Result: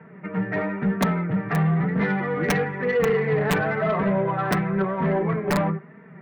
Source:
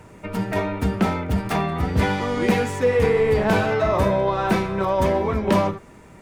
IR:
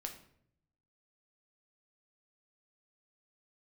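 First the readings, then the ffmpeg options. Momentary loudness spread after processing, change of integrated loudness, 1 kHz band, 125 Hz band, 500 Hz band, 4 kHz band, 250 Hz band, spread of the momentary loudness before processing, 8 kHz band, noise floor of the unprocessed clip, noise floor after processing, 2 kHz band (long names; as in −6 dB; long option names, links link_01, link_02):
5 LU, −2.0 dB, −3.5 dB, 0.0 dB, −3.5 dB, −5.0 dB, −0.5 dB, 6 LU, −1.5 dB, −46 dBFS, −46 dBFS, +0.5 dB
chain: -af "highpass=frequency=130:width=0.5412,highpass=frequency=130:width=1.3066,equalizer=frequency=160:width_type=q:width=4:gain=9,equalizer=frequency=270:width_type=q:width=4:gain=-6,equalizer=frequency=570:width_type=q:width=4:gain=-4,equalizer=frequency=900:width_type=q:width=4:gain=-6,equalizer=frequency=1900:width_type=q:width=4:gain=7,lowpass=frequency=2000:width=0.5412,lowpass=frequency=2000:width=1.3066,aeval=exprs='(mod(2.66*val(0)+1,2)-1)/2.66':channel_layout=same,flanger=delay=4.4:depth=2.5:regen=2:speed=1:shape=sinusoidal,aeval=exprs='0.355*(cos(1*acos(clip(val(0)/0.355,-1,1)))-cos(1*PI/2))+0.002*(cos(3*acos(clip(val(0)/0.355,-1,1)))-cos(3*PI/2))+0.0631*(cos(5*acos(clip(val(0)/0.355,-1,1)))-cos(5*PI/2))':channel_layout=same,volume=-2dB" -ar 48000 -c:a libmp3lame -b:a 112k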